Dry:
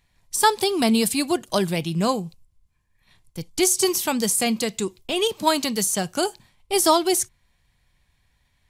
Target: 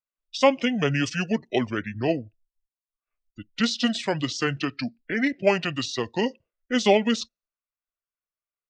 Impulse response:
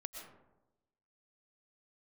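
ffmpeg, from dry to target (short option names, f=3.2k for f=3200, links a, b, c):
-filter_complex "[0:a]afftdn=nr=30:nf=-39,acrossover=split=280 6500:gain=0.141 1 0.126[a][b][c];[a][b][c]amix=inputs=3:normalize=0,asetrate=27781,aresample=44100,atempo=1.5874"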